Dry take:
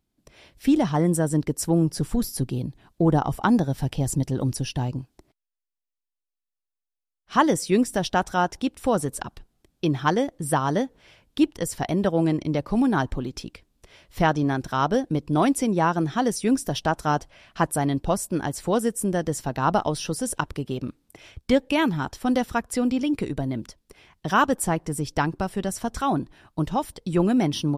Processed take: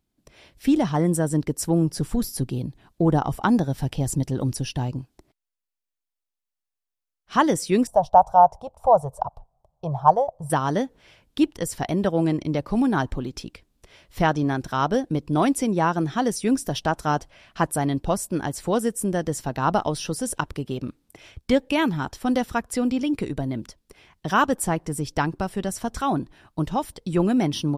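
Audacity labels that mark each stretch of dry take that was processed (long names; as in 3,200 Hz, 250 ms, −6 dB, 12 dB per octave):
7.870000	10.500000	drawn EQ curve 150 Hz 0 dB, 290 Hz −24 dB, 640 Hz +12 dB, 960 Hz +9 dB, 1,800 Hz −25 dB, 6,000 Hz −15 dB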